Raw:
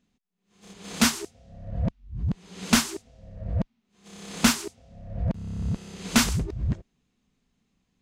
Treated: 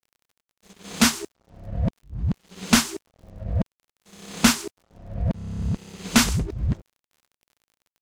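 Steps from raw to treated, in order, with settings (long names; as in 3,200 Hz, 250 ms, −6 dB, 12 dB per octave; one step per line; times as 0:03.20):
dead-zone distortion −49 dBFS
surface crackle 41 per second −49 dBFS
level +3 dB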